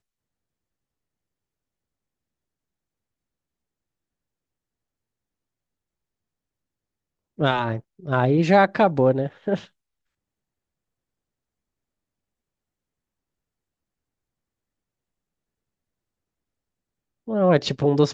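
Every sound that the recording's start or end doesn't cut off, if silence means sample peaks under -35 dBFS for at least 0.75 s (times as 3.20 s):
7.39–9.64 s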